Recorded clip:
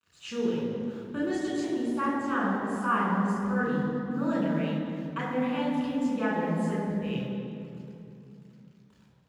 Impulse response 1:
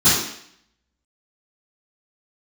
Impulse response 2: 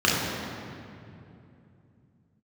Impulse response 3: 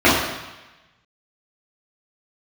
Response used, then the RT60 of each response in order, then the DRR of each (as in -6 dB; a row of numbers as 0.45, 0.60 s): 2; 0.65, 2.7, 1.1 s; -19.5, -6.0, -10.5 dB